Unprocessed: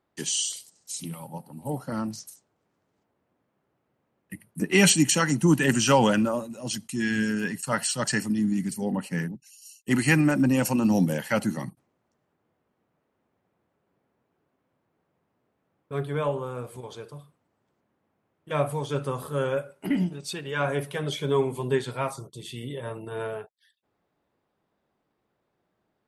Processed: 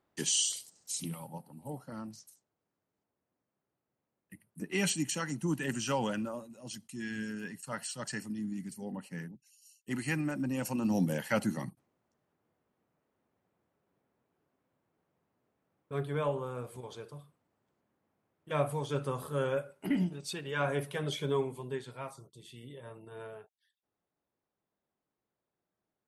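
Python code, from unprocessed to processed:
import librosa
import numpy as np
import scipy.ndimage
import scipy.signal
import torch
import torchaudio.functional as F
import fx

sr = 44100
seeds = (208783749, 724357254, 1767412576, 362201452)

y = fx.gain(x, sr, db=fx.line((1.0, -2.0), (1.88, -12.5), (10.47, -12.5), (11.2, -5.0), (21.22, -5.0), (21.71, -13.0)))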